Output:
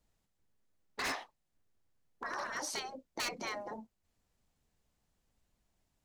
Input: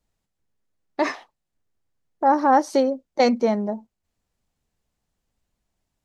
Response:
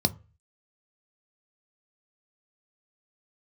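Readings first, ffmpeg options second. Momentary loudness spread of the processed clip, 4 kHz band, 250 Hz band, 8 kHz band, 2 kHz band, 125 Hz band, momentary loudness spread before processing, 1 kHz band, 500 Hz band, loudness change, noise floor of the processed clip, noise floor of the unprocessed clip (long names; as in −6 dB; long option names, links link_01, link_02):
11 LU, −5.0 dB, −26.5 dB, −1.0 dB, −7.5 dB, can't be measured, 15 LU, −21.0 dB, −24.0 dB, −18.5 dB, −82 dBFS, −81 dBFS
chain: -af "afftfilt=real='re*lt(hypot(re,im),0.141)':imag='im*lt(hypot(re,im),0.141)':win_size=1024:overlap=0.75,aeval=exprs='0.0376*(abs(mod(val(0)/0.0376+3,4)-2)-1)':channel_layout=same,volume=-1dB"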